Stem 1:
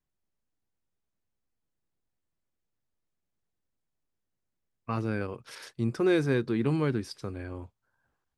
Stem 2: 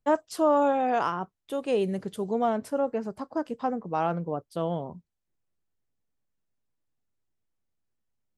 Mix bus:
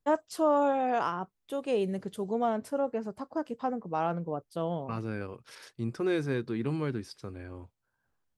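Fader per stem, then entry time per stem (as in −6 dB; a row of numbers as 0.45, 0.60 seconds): −4.5, −3.0 decibels; 0.00, 0.00 seconds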